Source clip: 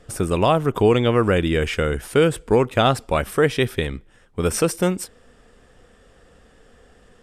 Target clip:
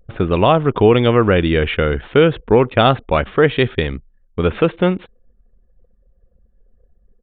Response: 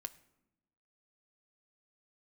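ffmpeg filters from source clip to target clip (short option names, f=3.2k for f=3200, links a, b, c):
-af "anlmdn=0.398,aresample=8000,aresample=44100,volume=4.5dB"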